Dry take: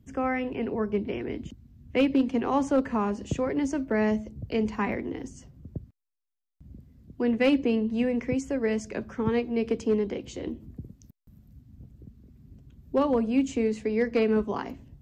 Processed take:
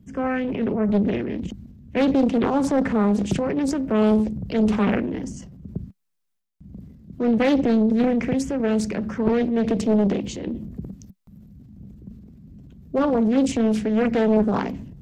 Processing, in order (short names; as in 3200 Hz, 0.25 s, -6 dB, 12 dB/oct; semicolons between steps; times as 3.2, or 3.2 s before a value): bell 190 Hz +12 dB 0.59 oct; transient shaper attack -1 dB, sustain +8 dB; Doppler distortion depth 0.89 ms; gain +1.5 dB